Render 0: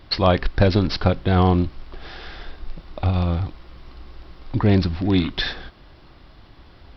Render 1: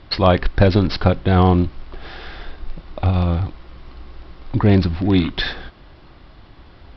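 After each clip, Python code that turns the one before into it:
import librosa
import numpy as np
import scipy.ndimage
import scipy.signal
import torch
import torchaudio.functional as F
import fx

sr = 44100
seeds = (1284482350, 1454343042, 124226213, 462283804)

y = scipy.signal.sosfilt(scipy.signal.bessel(2, 4400.0, 'lowpass', norm='mag', fs=sr, output='sos'), x)
y = y * librosa.db_to_amplitude(3.0)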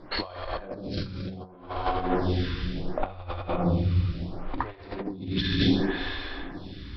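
y = fx.rev_plate(x, sr, seeds[0], rt60_s=2.8, hf_ratio=1.0, predelay_ms=0, drr_db=-3.0)
y = fx.over_compress(y, sr, threshold_db=-19.0, ratio=-0.5)
y = fx.stagger_phaser(y, sr, hz=0.69)
y = y * librosa.db_to_amplitude(-4.5)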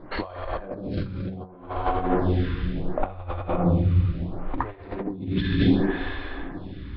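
y = fx.air_absorb(x, sr, metres=420.0)
y = y * librosa.db_to_amplitude(4.0)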